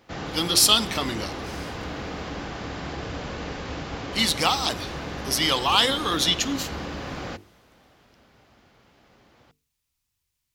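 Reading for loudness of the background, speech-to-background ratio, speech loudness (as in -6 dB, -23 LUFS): -34.0 LUFS, 12.5 dB, -21.5 LUFS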